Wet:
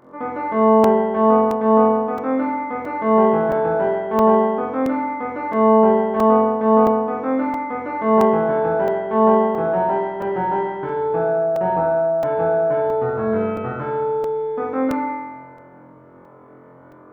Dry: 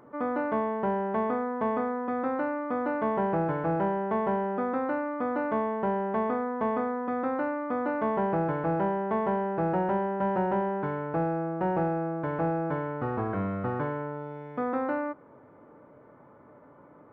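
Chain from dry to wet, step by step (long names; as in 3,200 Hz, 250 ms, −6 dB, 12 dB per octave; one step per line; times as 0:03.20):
flutter between parallel walls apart 3.9 metres, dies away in 1.3 s
regular buffer underruns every 0.67 s, samples 128, zero, from 0:00.84
level +1.5 dB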